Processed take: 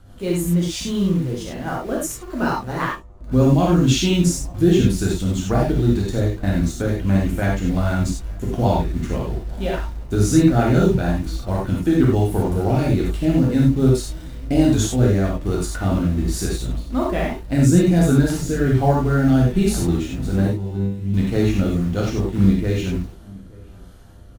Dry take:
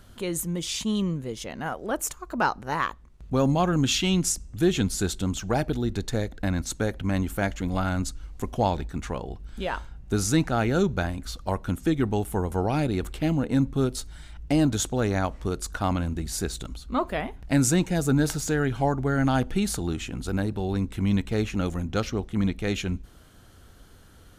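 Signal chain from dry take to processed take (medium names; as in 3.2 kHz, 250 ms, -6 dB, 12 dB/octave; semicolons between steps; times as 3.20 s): tilt shelf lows +3.5 dB, about 710 Hz; mains buzz 100 Hz, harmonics 13, -57 dBFS -4 dB/octave; rotary cabinet horn 6.3 Hz, later 1.2 Hz, at 13.04 s; in parallel at -11.5 dB: word length cut 6-bit, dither none; 20.47–21.14 s: on the sum: feedback comb 99 Hz, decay 0.66 s, harmonics all, mix 90%; echo from a far wall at 150 m, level -24 dB; gated-style reverb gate 120 ms flat, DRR -4 dB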